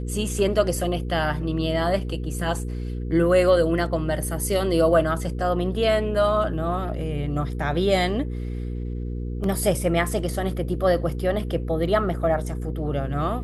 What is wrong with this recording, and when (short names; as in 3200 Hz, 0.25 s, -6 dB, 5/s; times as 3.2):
hum 60 Hz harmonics 8 -29 dBFS
9.44 gap 2.1 ms